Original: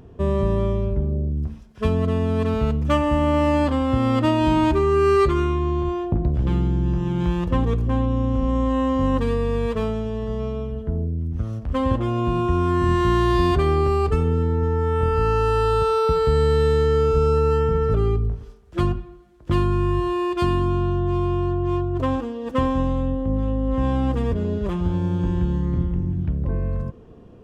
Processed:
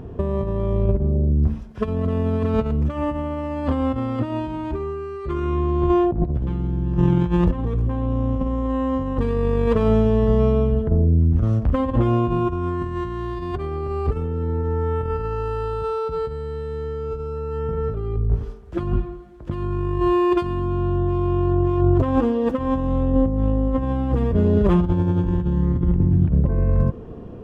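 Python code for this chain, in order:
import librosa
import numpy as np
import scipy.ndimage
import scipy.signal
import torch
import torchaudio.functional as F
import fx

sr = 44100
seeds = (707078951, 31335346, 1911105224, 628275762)

y = fx.over_compress(x, sr, threshold_db=-24.0, ratio=-0.5)
y = fx.high_shelf(y, sr, hz=2500.0, db=-10.5)
y = y * 10.0 ** (5.0 / 20.0)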